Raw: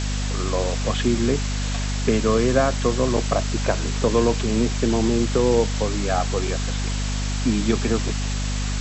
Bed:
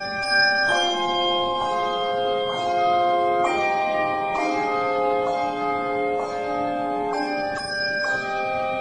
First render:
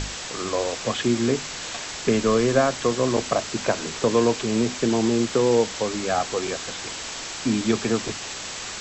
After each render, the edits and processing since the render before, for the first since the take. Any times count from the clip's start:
mains-hum notches 50/100/150/200/250 Hz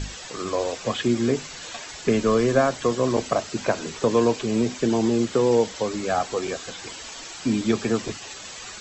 broadband denoise 10 dB, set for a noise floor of −34 dBFS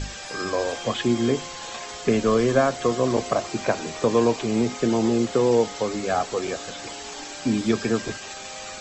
mix in bed −16.5 dB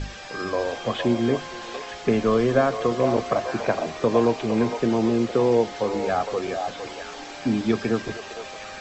high-frequency loss of the air 120 metres
echo through a band-pass that steps 459 ms, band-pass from 740 Hz, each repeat 1.4 octaves, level −4 dB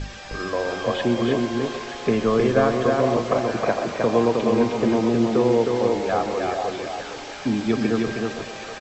single-tap delay 313 ms −3.5 dB
feedback echo with a swinging delay time 129 ms, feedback 64%, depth 103 cents, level −15.5 dB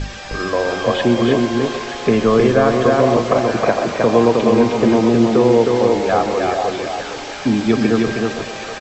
level +6.5 dB
brickwall limiter −3 dBFS, peak gain reduction 3 dB

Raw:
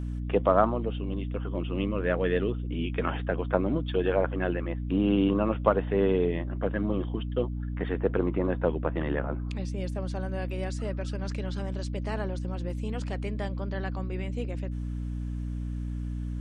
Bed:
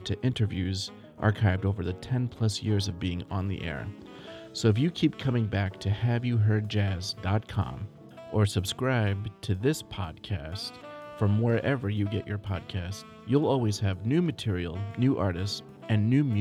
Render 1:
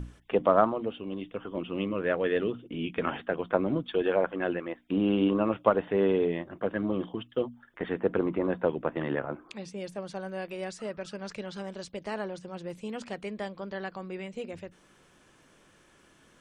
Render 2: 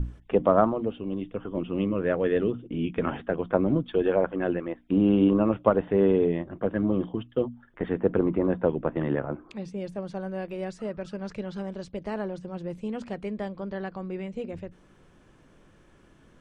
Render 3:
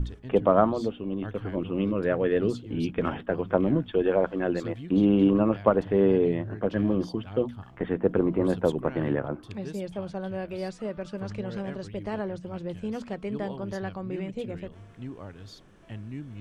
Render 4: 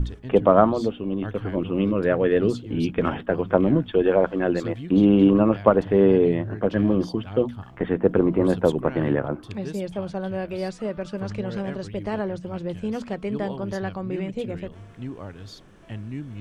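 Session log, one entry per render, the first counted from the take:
mains-hum notches 60/120/180/240/300 Hz
spectral tilt −2.5 dB per octave
mix in bed −14.5 dB
level +4.5 dB

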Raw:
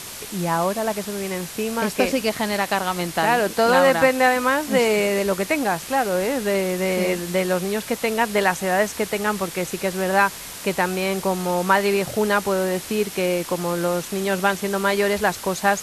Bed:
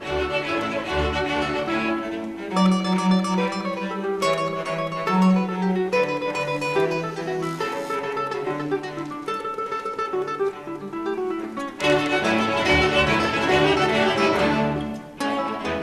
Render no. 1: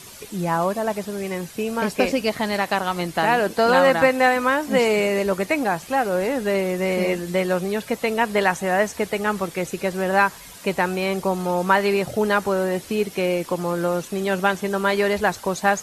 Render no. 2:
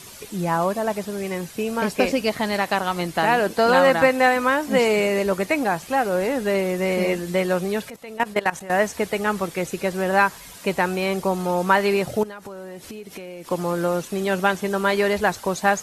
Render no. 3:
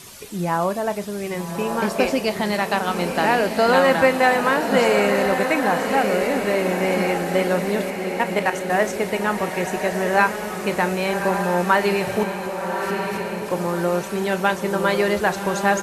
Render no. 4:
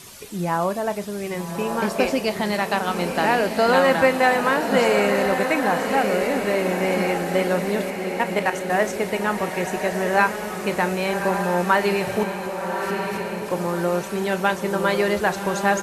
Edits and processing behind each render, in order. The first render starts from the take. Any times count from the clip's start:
broadband denoise 10 dB, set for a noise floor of −36 dBFS
0:07.90–0:08.70: output level in coarse steps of 18 dB; 0:12.23–0:13.51: downward compressor 20 to 1, threshold −32 dBFS
double-tracking delay 34 ms −14 dB; feedback delay with all-pass diffusion 1,187 ms, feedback 47%, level −5.5 dB
level −1 dB

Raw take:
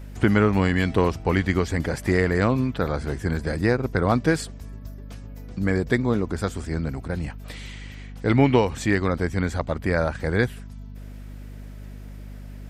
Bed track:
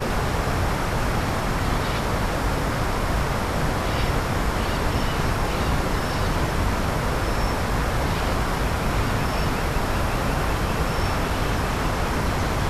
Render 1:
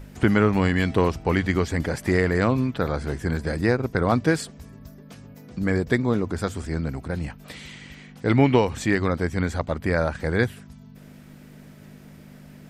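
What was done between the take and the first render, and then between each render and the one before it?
hum removal 50 Hz, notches 2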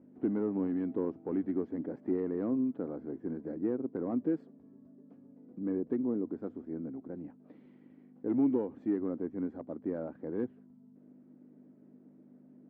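gain into a clipping stage and back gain 14.5 dB
four-pole ladder band-pass 320 Hz, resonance 55%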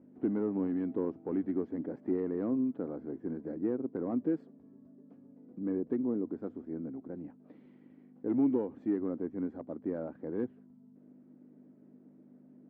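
no processing that can be heard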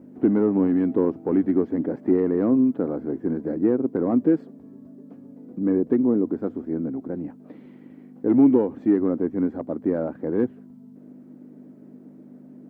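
level +12 dB

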